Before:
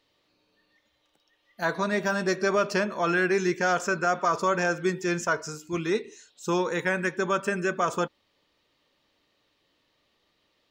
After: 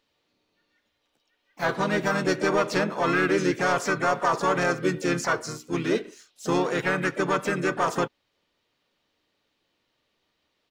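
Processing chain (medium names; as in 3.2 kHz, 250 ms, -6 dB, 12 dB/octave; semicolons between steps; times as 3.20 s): waveshaping leveller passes 1; harmony voices -4 st -5 dB, +4 st -12 dB, +7 st -14 dB; trim -3 dB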